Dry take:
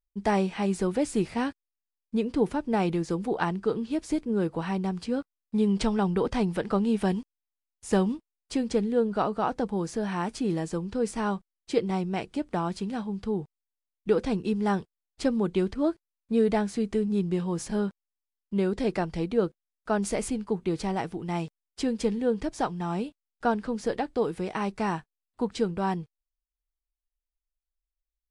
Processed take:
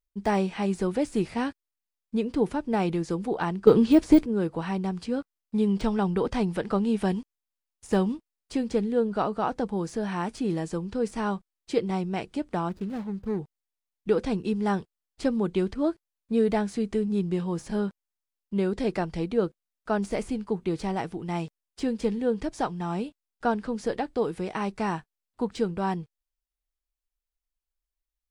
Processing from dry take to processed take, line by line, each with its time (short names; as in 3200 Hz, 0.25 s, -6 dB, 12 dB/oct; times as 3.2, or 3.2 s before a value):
3.67–4.26 gain +11.5 dB
12.69–13.39 median filter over 41 samples
whole clip: de-esser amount 95%